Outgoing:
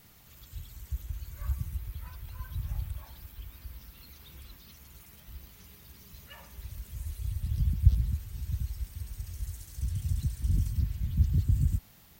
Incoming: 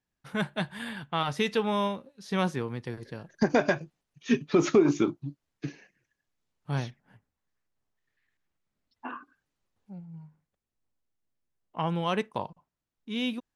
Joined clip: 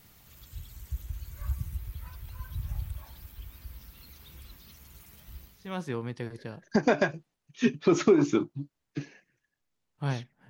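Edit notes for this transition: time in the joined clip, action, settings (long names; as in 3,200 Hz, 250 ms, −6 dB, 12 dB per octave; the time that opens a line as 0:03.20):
outgoing
0:05.68: continue with incoming from 0:02.35, crossfade 0.58 s quadratic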